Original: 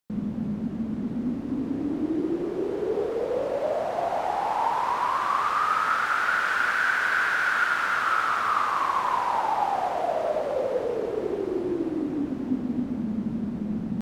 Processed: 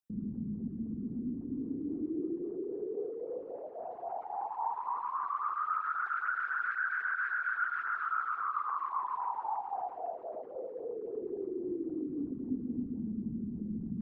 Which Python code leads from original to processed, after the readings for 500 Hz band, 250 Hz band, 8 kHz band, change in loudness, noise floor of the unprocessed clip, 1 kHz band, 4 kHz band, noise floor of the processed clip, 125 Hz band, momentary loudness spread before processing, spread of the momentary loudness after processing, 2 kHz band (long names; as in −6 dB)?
−12.0 dB, −8.5 dB, below −35 dB, −10.0 dB, −33 dBFS, −10.0 dB, below −30 dB, −45 dBFS, can't be measured, 7 LU, 8 LU, −10.0 dB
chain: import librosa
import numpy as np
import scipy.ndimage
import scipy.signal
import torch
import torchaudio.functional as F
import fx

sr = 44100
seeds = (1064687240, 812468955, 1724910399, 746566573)

y = fx.envelope_sharpen(x, sr, power=2.0)
y = fx.peak_eq(y, sr, hz=580.0, db=-13.0, octaves=0.28)
y = fx.filter_lfo_notch(y, sr, shape='sine', hz=3.7, low_hz=600.0, high_hz=4600.0, q=1.4)
y = F.gain(torch.from_numpy(y), -8.0).numpy()